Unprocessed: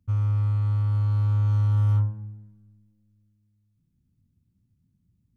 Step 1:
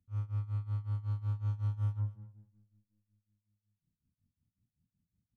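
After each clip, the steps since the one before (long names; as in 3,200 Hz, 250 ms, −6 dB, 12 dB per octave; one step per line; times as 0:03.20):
amplitude tremolo 5.4 Hz, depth 92%
single-tap delay 241 ms −19 dB
level −9 dB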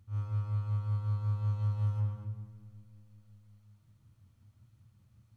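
compressor on every frequency bin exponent 0.6
comb and all-pass reverb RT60 0.76 s, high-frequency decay 0.75×, pre-delay 45 ms, DRR 0.5 dB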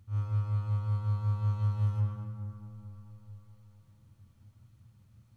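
bucket-brigade delay 436 ms, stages 4,096, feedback 51%, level −11 dB
level +3 dB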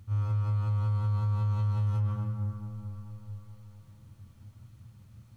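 brickwall limiter −30 dBFS, peak gain reduction 9 dB
level +7 dB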